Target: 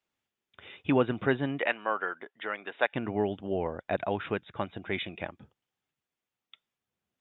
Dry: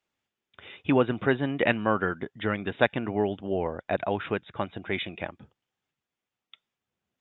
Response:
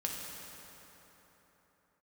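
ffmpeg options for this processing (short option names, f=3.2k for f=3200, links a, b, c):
-filter_complex "[0:a]asettb=1/sr,asplit=3[a][b][c];[a]atrim=end=1.594[d];[b]atrim=start=1.59:end=2.95,asetpts=PTS-STARTPTS,afade=t=in:d=0.004:c=qsin,afade=t=out:st=1.356:d=0.004:c=qsin,highpass=570,lowpass=3.4k[e];[c]atrim=start=2.946[f];[d][e]acrossfade=d=0.004:c1=hsin:c2=qsin[g];[g][f]acrossfade=d=0.004:c1=qsin:c2=hsin,volume=-2.5dB"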